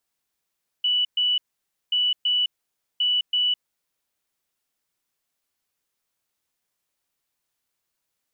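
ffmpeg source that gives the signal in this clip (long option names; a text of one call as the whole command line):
ffmpeg -f lavfi -i "aevalsrc='0.119*sin(2*PI*2960*t)*clip(min(mod(mod(t,1.08),0.33),0.21-mod(mod(t,1.08),0.33))/0.005,0,1)*lt(mod(t,1.08),0.66)':duration=3.24:sample_rate=44100" out.wav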